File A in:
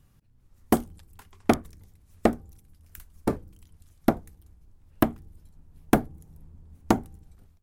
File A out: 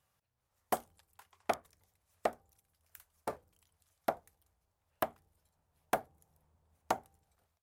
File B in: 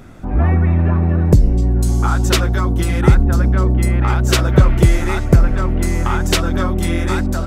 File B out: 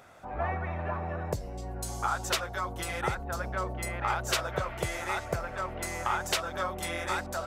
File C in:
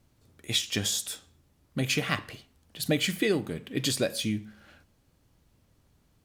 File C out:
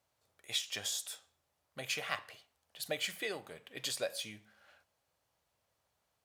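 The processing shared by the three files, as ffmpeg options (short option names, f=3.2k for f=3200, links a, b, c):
-af "highpass=62,lowshelf=f=420:t=q:w=1.5:g=-13,alimiter=limit=-7.5dB:level=0:latency=1:release=428,volume=-8dB"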